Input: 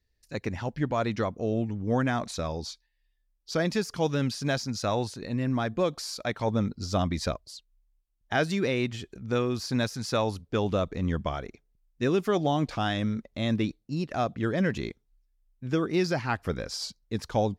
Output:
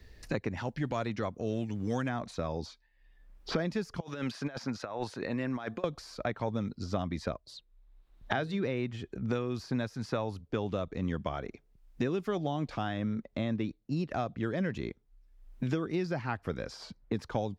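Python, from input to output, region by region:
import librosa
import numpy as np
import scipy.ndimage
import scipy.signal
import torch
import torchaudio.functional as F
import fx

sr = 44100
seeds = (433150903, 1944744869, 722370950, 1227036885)

y = fx.chain(x, sr, fx.high_shelf(hz=3000.0, db=11.0),
    fx.transient(attack_db=-7, sustain_db=-2), at=(0.57, 2.09))
y = fx.chain(y, sr, fx.highpass(hz=740.0, slope=6),
    fx.over_compress(threshold_db=-37.0, ratio=-0.5), at=(4.0, 5.84))
y = fx.chain(y, sr, fx.peak_eq(hz=3800.0, db=10.0, octaves=0.34),
    fx.hum_notches(base_hz=60, count=8), at=(7.44, 8.64))
y = fx.high_shelf(y, sr, hz=4100.0, db=-11.5)
y = fx.band_squash(y, sr, depth_pct=100)
y = F.gain(torch.from_numpy(y), -5.5).numpy()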